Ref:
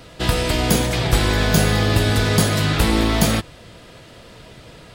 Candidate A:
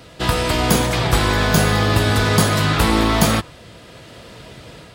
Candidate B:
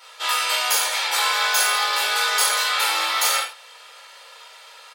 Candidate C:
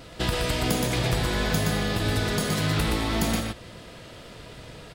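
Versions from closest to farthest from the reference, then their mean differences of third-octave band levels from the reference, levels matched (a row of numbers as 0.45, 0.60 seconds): A, C, B; 1.0, 4.0, 13.5 decibels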